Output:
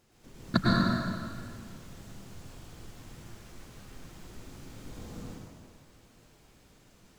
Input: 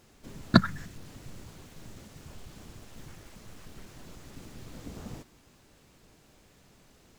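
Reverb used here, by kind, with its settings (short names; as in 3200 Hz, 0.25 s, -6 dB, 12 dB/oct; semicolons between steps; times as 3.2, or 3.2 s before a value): plate-style reverb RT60 2 s, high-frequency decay 0.8×, pre-delay 90 ms, DRR -6.5 dB; gain -7.5 dB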